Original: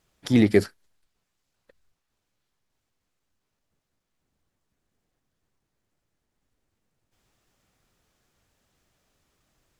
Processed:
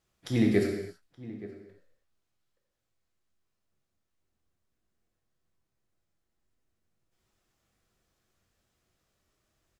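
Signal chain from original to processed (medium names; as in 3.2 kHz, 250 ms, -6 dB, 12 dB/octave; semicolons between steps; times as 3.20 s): band-stop 890 Hz, Q 13; echo from a far wall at 150 m, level -17 dB; gated-style reverb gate 350 ms falling, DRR 0 dB; trim -8.5 dB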